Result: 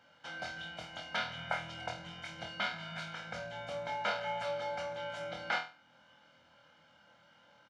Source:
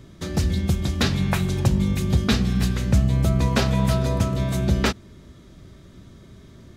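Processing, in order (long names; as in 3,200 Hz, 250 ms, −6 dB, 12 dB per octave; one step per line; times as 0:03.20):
high-pass filter 1,000 Hz 12 dB per octave
comb filter 1.2 ms, depth 88%
in parallel at −1.5 dB: downward compressor, threshold −40 dBFS, peak gain reduction 19 dB
on the sum: speed change −12%
head-to-tape spacing loss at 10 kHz 29 dB
on a send: flutter between parallel walls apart 4.2 metres, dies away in 0.34 s
on the sum: level −7 dB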